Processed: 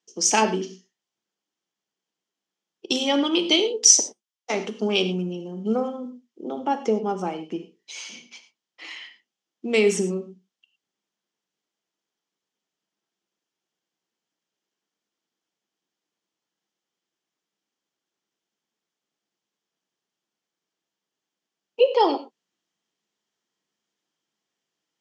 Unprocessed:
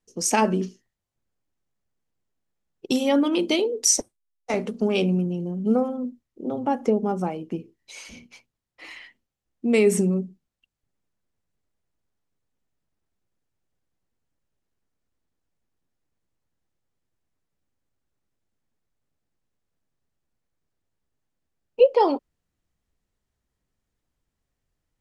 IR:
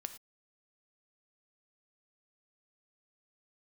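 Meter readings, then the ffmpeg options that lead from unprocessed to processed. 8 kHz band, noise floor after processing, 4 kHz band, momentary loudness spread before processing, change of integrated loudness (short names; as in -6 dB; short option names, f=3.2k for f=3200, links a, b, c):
+5.5 dB, under -85 dBFS, +7.5 dB, 16 LU, +1.0 dB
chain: -filter_complex "[0:a]aexciter=amount=2:drive=3.3:freq=5k,highpass=f=210:w=0.5412,highpass=f=210:w=1.3066,equalizer=f=250:t=q:w=4:g=-6,equalizer=f=560:t=q:w=4:g=-5,equalizer=f=3.2k:t=q:w=4:g=9,lowpass=f=7.4k:w=0.5412,lowpass=f=7.4k:w=1.3066[a];[1:a]atrim=start_sample=2205,asetrate=43218,aresample=44100[b];[a][b]afir=irnorm=-1:irlink=0,volume=4dB"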